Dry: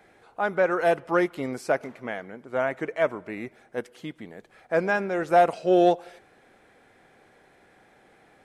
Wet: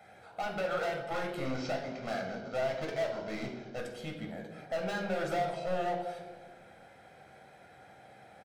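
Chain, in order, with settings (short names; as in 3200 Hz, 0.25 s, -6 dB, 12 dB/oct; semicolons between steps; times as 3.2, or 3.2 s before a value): 1.45–3.79 CVSD 32 kbps; HPF 85 Hz; comb 1.3 ms, depth 43%; compressor 5:1, threshold -27 dBFS, peak gain reduction 14.5 dB; hard clip -32 dBFS, distortion -7 dB; reverb RT60 1.4 s, pre-delay 9 ms, DRR 1 dB; gain -3.5 dB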